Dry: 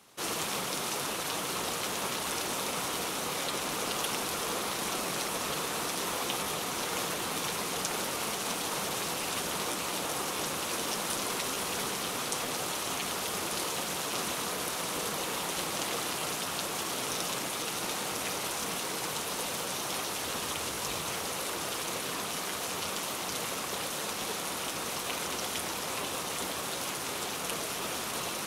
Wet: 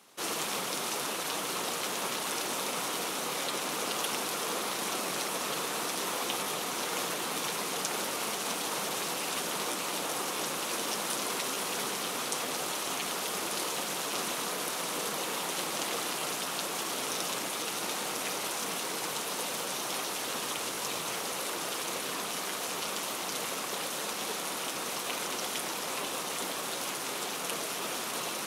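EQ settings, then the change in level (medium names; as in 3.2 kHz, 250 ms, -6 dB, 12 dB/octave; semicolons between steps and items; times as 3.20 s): high-pass 180 Hz 12 dB/octave; 0.0 dB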